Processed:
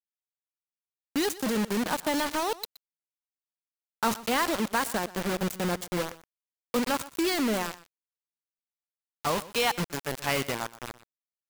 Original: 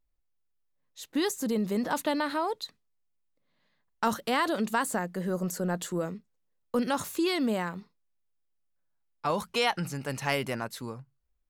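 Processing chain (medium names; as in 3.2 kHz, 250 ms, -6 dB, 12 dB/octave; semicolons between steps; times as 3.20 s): bit crusher 5-bit; on a send: delay 122 ms -18 dB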